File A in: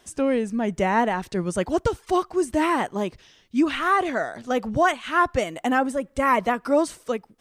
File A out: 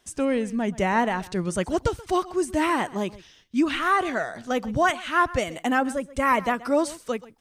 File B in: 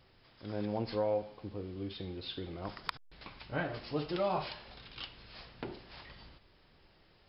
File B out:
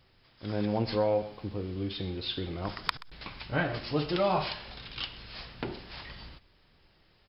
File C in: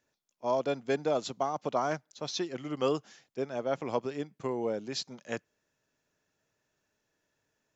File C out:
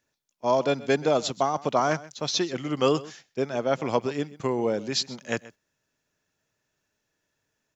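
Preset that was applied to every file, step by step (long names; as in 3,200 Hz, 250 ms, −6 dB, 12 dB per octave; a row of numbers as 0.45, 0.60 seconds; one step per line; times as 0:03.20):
parametric band 530 Hz −3.5 dB 2.7 octaves
single-tap delay 129 ms −19 dB
noise gate −57 dBFS, range −7 dB
normalise the peak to −9 dBFS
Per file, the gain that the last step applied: +1.0, +8.5, +9.5 decibels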